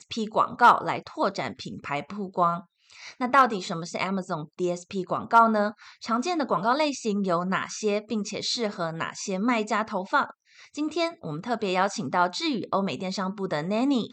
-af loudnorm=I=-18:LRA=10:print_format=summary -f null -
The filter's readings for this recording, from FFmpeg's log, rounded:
Input Integrated:    -26.3 LUFS
Input True Peak:      -7.7 dBTP
Input LRA:             2.7 LU
Input Threshold:     -36.5 LUFS